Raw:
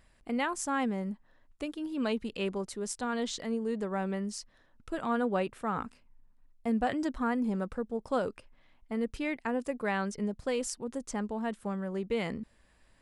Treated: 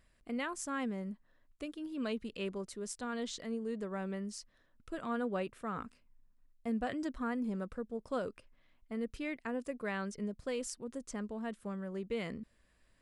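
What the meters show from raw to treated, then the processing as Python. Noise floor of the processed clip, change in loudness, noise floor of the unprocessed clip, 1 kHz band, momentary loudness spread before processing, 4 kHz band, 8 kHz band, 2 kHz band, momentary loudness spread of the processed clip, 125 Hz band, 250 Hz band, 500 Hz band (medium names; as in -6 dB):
-71 dBFS, -6.0 dB, -65 dBFS, -8.0 dB, 8 LU, -5.5 dB, -5.5 dB, -5.5 dB, 7 LU, -5.5 dB, -5.5 dB, -6.0 dB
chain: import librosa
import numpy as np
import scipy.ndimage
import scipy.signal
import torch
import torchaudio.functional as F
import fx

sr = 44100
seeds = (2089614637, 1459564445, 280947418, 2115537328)

y = fx.peak_eq(x, sr, hz=840.0, db=-9.0, octaves=0.25)
y = y * 10.0 ** (-5.5 / 20.0)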